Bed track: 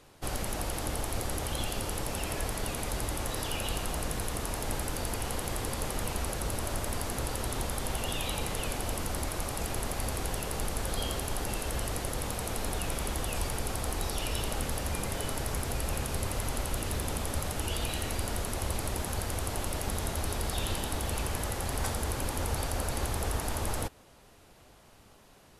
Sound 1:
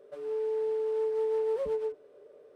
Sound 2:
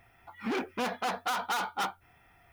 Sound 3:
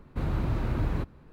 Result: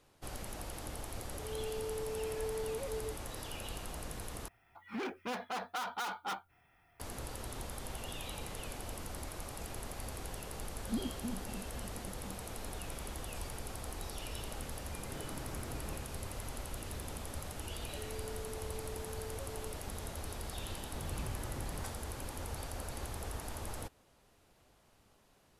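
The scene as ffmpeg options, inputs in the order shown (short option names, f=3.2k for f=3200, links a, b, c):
-filter_complex "[1:a]asplit=2[a][b];[2:a]asplit=2[c][d];[3:a]asplit=2[e][f];[0:a]volume=-10dB[g];[d]asuperpass=centerf=180:order=4:qfactor=1.2[h];[e]highpass=180[i];[b]acompressor=threshold=-41dB:ratio=6:attack=3.2:release=140:knee=1:detection=peak[j];[g]asplit=2[k][l];[k]atrim=end=4.484[m];[c]atrim=end=2.52,asetpts=PTS-STARTPTS,volume=-7dB[n];[l]atrim=start=6.996[o];[a]atrim=end=2.55,asetpts=PTS-STARTPTS,volume=-10dB,afade=t=in:d=0.004:c=hsin,afade=t=out:st=2.546:d=0.004:c=hsin,adelay=1220[p];[h]atrim=end=2.52,asetpts=PTS-STARTPTS,volume=-0.5dB,afade=t=in:d=0.004:c=hsin,afade=t=out:st=2.516:d=0.004:c=hsin,adelay=10460[q];[i]atrim=end=1.32,asetpts=PTS-STARTPTS,volume=-13dB,afade=t=in:d=0.004:c=hsin,afade=t=out:st=1.316:d=0.004:c=hsin,adelay=14930[r];[j]atrim=end=2.55,asetpts=PTS-STARTPTS,volume=-5dB,afade=t=in:d=0.004:c=hsin,afade=t=out:st=2.546:d=0.004:c=hsin,adelay=17810[s];[f]atrim=end=1.32,asetpts=PTS-STARTPTS,volume=-14.5dB,afade=t=in:d=0.004:c=hsin,afade=t=out:st=1.316:d=0.004:c=hsin,adelay=20790[t];[m][n]acrossfade=d=0.004:c1=hsin:c2=hsin[u];[u][o]acrossfade=d=0.004:c1=hsin:c2=hsin[v];[v][p][q][r][s][t]amix=inputs=6:normalize=0"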